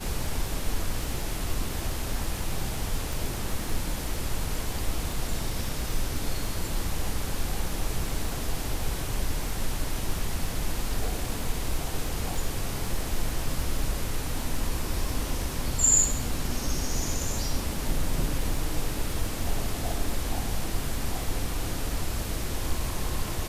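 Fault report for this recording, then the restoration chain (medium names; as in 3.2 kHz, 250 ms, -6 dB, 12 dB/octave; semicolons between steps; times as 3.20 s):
crackle 25 per s -33 dBFS
3.13 s: pop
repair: de-click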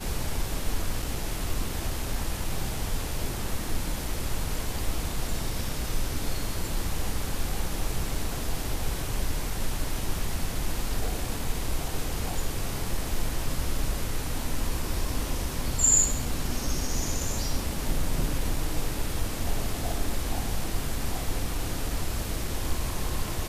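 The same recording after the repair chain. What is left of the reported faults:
3.13 s: pop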